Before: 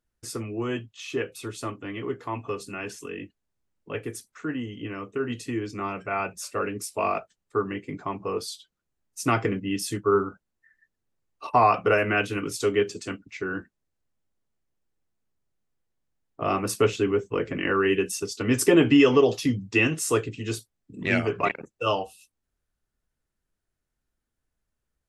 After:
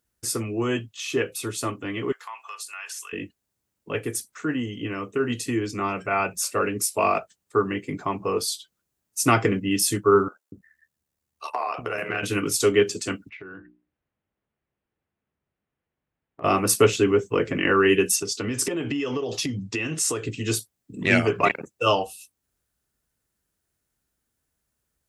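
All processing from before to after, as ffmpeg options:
-filter_complex "[0:a]asettb=1/sr,asplit=3[a][b][c];[a]atrim=end=2.124[d];[b]atrim=start=2.12:end=3.13,asetpts=PTS-STARTPTS,afade=t=in:d=0.004:c=qsin,afade=t=out:st=1.006:d=0.004:c=qsin,highpass=f=920:w=0.5412,highpass=f=920:w=1.3066,acompressor=threshold=-41dB:ratio=2:attack=3.2:release=140:knee=1:detection=peak[e];[c]atrim=start=3.126[f];[d][e]acrossfade=d=0.004:c1=hsin:c2=qsin[g];[g][f]acrossfade=d=0.004:c1=qsin:c2=hsin,asettb=1/sr,asplit=3[h][i][j];[h]atrim=end=10.284[k];[i]atrim=start=10.28:end=12.23,asetpts=PTS-STARTPTS,afade=t=in:d=0.004:c=qsin,afade=t=out:st=1.946:d=0.004:c=qsin,acompressor=threshold=-24dB:ratio=10:attack=3.2:release=140:knee=1:detection=peak,tremolo=f=74:d=0.621,acrossover=split=370[l][m];[l]adelay=240[n];[n][m]amix=inputs=2:normalize=0,atrim=end_sample=85995[o];[j]atrim=start=12.226[p];[k][o]acrossfade=d=0.004:c1=hsin:c2=qsin[q];[q][p]acrossfade=d=0.004:c1=qsin:c2=hsin,asettb=1/sr,asplit=3[r][s][t];[r]atrim=end=13.294[u];[s]atrim=start=13.29:end=16.44,asetpts=PTS-STARTPTS,afade=t=in:d=0.004:c=qsin,afade=t=out:st=3.146:d=0.004:c=qsin,lowpass=f=2.8k:w=0.5412,lowpass=f=2.8k:w=1.3066,bandreject=f=60:t=h:w=6,bandreject=f=120:t=h:w=6,bandreject=f=180:t=h:w=6,bandreject=f=240:t=h:w=6,bandreject=f=300:t=h:w=6,bandreject=f=360:t=h:w=6,acompressor=threshold=-43dB:ratio=5:attack=3.2:release=140:knee=1:detection=peak[v];[t]atrim=start=16.436[w];[u][v]acrossfade=d=0.004:c1=hsin:c2=qsin[x];[x][w]acrossfade=d=0.004:c1=qsin:c2=hsin,asettb=1/sr,asplit=3[y][z][aa];[y]atrim=end=18.164[ab];[z]atrim=start=18.16:end=20.25,asetpts=PTS-STARTPTS,afade=t=in:d=0.004:c=qsin,afade=t=out:st=2.086:d=0.004:c=qsin,lowpass=7.7k,acompressor=threshold=-28dB:ratio=10:attack=3.2:release=140:knee=1:detection=peak[ac];[aa]atrim=start=20.246[ad];[ab][ac]acrossfade=d=0.004:c1=hsin:c2=qsin[ae];[ae][ad]acrossfade=d=0.004:c1=qsin:c2=hsin,highpass=56,highshelf=f=6.4k:g=10,volume=4dB"

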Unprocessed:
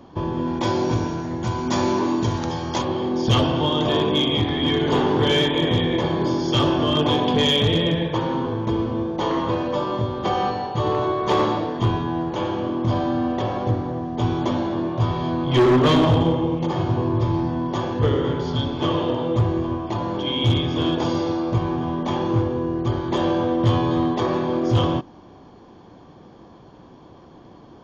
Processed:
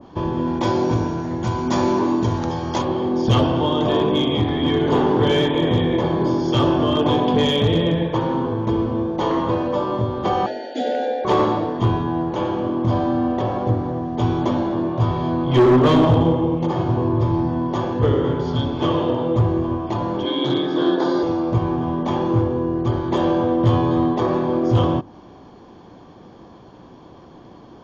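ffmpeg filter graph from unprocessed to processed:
-filter_complex "[0:a]asettb=1/sr,asplit=3[a][b][c];[a]atrim=end=10.464[d];[b]atrim=start=10.46:end=11.25,asetpts=PTS-STARTPTS,afade=t=in:d=0.004:c=qsin,afade=t=out:st=0.786:d=0.004:c=qsin,afreqshift=140,asuperstop=centerf=1100:order=20:qfactor=1.9,equalizer=f=120:t=o:w=1.5:g=-14.5[e];[c]atrim=start=11.246[f];[d][e]acrossfade=d=0.004:c1=hsin:c2=qsin[g];[g][f]acrossfade=d=0.004:c1=qsin:c2=hsin,asettb=1/sr,asplit=3[h][i][j];[h]atrim=end=20.254[k];[i]atrim=start=20.25:end=21.23,asetpts=PTS-STARTPTS,afade=t=in:d=0.004:c=qsin,afade=t=out:st=0.976:d=0.004:c=qsin,afreqshift=19,highpass=270,equalizer=f=310:t=q:w=4:g=7,equalizer=f=1.6k:t=q:w=4:g=8,equalizer=f=2.6k:t=q:w=4:g=-10,equalizer=f=4k:t=q:w=4:g=9,lowpass=f=6.4k:w=0.5412,lowpass=f=6.4k:w=1.3066[l];[j]atrim=start=21.226[m];[k][l]acrossfade=d=0.004:c1=hsin:c2=qsin[n];[n][m]acrossfade=d=0.004:c1=qsin:c2=hsin,bandreject=f=50:t=h:w=6,bandreject=f=100:t=h:w=6,bandreject=f=150:t=h:w=6,adynamicequalizer=threshold=0.0141:dfrequency=1600:dqfactor=0.7:tfrequency=1600:tqfactor=0.7:attack=5:release=100:ratio=0.375:range=3.5:mode=cutabove:tftype=highshelf,volume=2.5dB"

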